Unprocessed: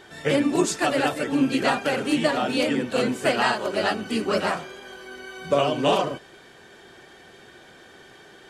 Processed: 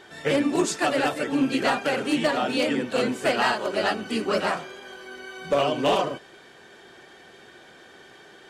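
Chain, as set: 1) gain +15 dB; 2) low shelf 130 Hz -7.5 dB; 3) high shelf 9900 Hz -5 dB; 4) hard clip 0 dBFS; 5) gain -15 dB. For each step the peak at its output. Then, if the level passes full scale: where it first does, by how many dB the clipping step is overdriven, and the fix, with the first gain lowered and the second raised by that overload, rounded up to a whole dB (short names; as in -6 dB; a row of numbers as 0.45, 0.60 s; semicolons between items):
+6.5, +6.5, +6.5, 0.0, -15.0 dBFS; step 1, 6.5 dB; step 1 +8 dB, step 5 -8 dB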